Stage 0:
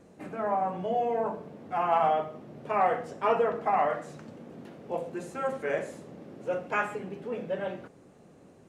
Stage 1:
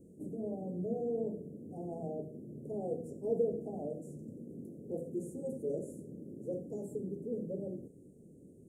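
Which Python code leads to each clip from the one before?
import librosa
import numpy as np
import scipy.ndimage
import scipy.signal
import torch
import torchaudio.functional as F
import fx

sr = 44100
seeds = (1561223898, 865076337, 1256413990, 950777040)

y = scipy.signal.sosfilt(scipy.signal.cheby2(4, 60, [1100.0, 3600.0], 'bandstop', fs=sr, output='sos'), x)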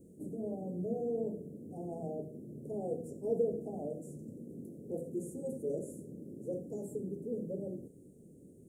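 y = fx.high_shelf(x, sr, hz=6200.0, db=6.0)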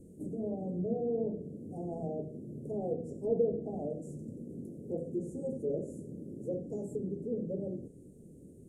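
y = fx.env_lowpass_down(x, sr, base_hz=2800.0, full_db=-31.5)
y = fx.low_shelf(y, sr, hz=67.0, db=11.5)
y = y * 10.0 ** (2.0 / 20.0)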